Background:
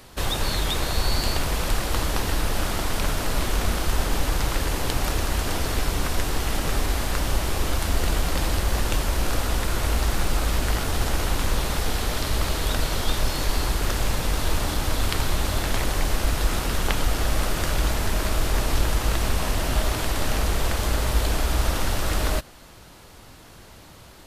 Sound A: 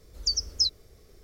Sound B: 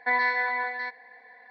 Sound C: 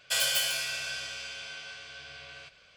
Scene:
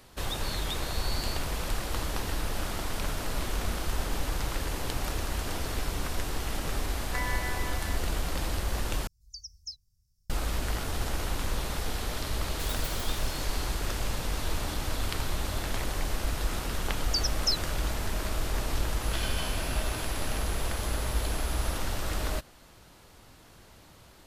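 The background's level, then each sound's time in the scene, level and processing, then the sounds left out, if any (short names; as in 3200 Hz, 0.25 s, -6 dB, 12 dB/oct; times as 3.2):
background -7.5 dB
7.07 add B -11 dB
9.07 replace with A -15 dB + elliptic band-stop 150–5200 Hz
12.49 add C -12 dB + spectral compressor 4:1
16.87 add A -3.5 dB
19.02 add C -9 dB + pulse-width modulation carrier 11000 Hz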